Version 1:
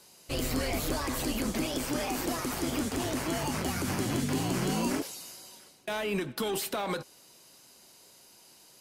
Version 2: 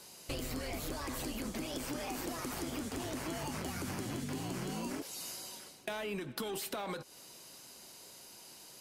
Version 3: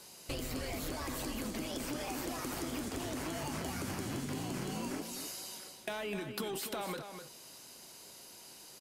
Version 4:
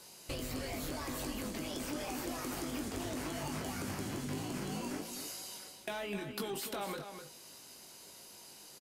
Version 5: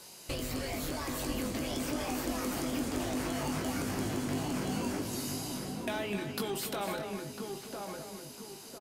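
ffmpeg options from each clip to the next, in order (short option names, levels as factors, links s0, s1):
-af "acompressor=threshold=0.01:ratio=6,volume=1.41"
-af "aecho=1:1:254:0.376"
-filter_complex "[0:a]asplit=2[s0][s1];[s1]adelay=20,volume=0.422[s2];[s0][s2]amix=inputs=2:normalize=0,volume=0.841"
-filter_complex "[0:a]asplit=2[s0][s1];[s1]adelay=1001,lowpass=f=1300:p=1,volume=0.631,asplit=2[s2][s3];[s3]adelay=1001,lowpass=f=1300:p=1,volume=0.43,asplit=2[s4][s5];[s5]adelay=1001,lowpass=f=1300:p=1,volume=0.43,asplit=2[s6][s7];[s7]adelay=1001,lowpass=f=1300:p=1,volume=0.43,asplit=2[s8][s9];[s9]adelay=1001,lowpass=f=1300:p=1,volume=0.43[s10];[s0][s2][s4][s6][s8][s10]amix=inputs=6:normalize=0,volume=1.5"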